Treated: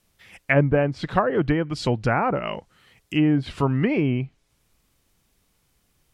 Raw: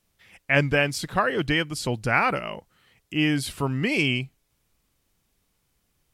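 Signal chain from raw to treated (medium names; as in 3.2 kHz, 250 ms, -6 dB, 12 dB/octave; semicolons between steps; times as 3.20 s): low-pass that closes with the level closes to 880 Hz, closed at -19 dBFS; trim +4.5 dB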